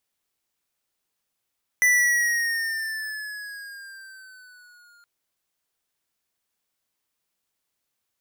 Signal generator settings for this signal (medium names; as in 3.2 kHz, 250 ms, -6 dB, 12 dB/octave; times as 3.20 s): gliding synth tone square, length 3.22 s, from 1.99 kHz, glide -6 st, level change -38 dB, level -17 dB